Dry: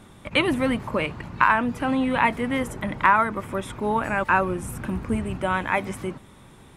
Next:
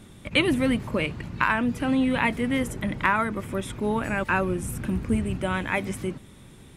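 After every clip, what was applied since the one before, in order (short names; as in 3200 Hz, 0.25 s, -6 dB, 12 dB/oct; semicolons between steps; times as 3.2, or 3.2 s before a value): bell 970 Hz -9 dB 1.6 oct; gain +2 dB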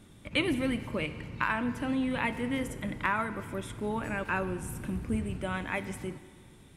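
FDN reverb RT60 1.8 s, low-frequency decay 0.8×, high-frequency decay 0.9×, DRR 11 dB; gain -7 dB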